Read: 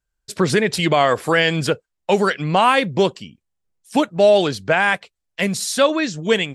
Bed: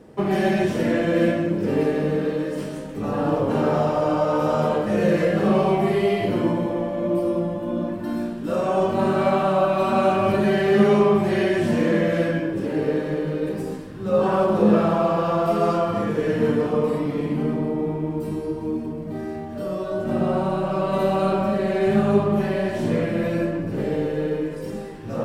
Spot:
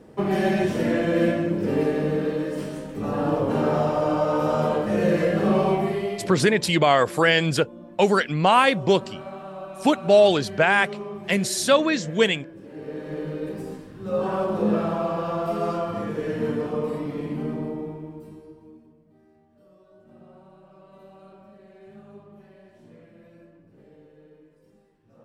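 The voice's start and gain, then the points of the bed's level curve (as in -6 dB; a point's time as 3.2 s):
5.90 s, -2.0 dB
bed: 5.72 s -1.5 dB
6.67 s -17.5 dB
12.65 s -17.5 dB
13.21 s -5.5 dB
17.67 s -5.5 dB
19.1 s -28 dB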